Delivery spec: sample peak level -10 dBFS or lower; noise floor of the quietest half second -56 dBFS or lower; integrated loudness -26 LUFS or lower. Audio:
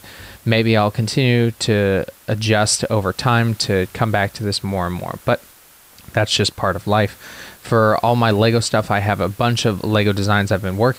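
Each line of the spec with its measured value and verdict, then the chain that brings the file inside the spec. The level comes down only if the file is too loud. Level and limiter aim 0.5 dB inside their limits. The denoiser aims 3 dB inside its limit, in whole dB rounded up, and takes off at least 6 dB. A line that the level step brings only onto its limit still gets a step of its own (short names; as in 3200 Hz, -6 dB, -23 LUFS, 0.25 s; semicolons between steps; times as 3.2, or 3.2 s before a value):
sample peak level -5.0 dBFS: fail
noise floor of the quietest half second -47 dBFS: fail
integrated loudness -18.0 LUFS: fail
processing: denoiser 6 dB, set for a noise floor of -47 dBFS; gain -8.5 dB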